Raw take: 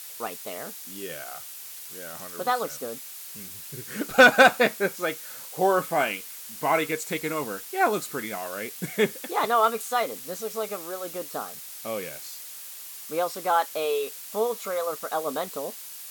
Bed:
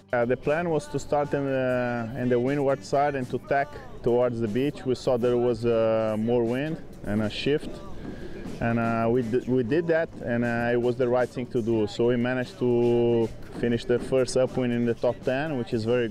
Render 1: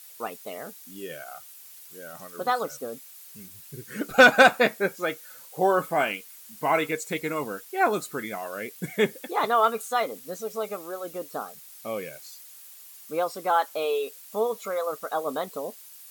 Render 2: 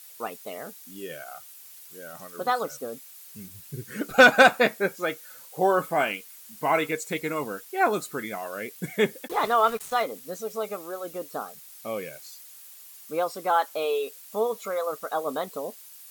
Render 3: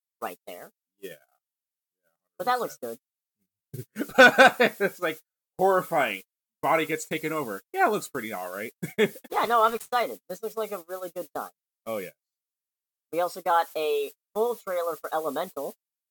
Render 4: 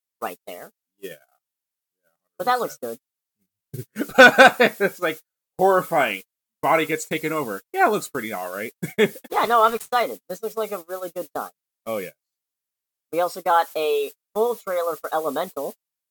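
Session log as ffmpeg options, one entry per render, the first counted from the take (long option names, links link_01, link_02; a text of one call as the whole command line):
ffmpeg -i in.wav -af "afftdn=noise_reduction=9:noise_floor=-41" out.wav
ffmpeg -i in.wav -filter_complex "[0:a]asettb=1/sr,asplit=3[link_01][link_02][link_03];[link_01]atrim=end=3.364[link_04];[link_02]atrim=start=3.36:end=3.91,asetpts=PTS-STARTPTS,afade=type=in:duration=0.004:curve=qsin,afade=type=out:start_time=0.546:duration=0.004:curve=qsin,equalizer=frequency=100:width=0.49:gain=6.5[link_05];[link_03]atrim=start=3.906[link_06];[link_04][link_05]acrossfade=duration=0.004:curve1=hsin:curve2=qsin[link_07];[link_07][link_06]acrossfade=duration=0.004:curve1=qsin:curve2=hsin,asplit=3[link_08][link_09][link_10];[link_08]afade=type=out:start_time=9.27:duration=0.02[link_11];[link_09]aeval=exprs='val(0)*gte(abs(val(0)),0.0158)':channel_layout=same,afade=type=in:start_time=9.27:duration=0.02,afade=type=out:start_time=10.02:duration=0.02[link_12];[link_10]afade=type=in:start_time=10.02:duration=0.02[link_13];[link_11][link_12][link_13]amix=inputs=3:normalize=0" out.wav
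ffmpeg -i in.wav -af "agate=range=-46dB:threshold=-35dB:ratio=16:detection=peak" out.wav
ffmpeg -i in.wav -af "volume=4.5dB" out.wav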